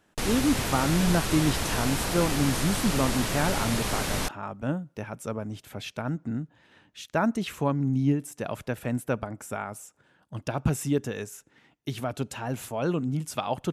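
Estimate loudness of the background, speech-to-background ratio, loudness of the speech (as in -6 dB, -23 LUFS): -29.0 LUFS, -0.5 dB, -29.5 LUFS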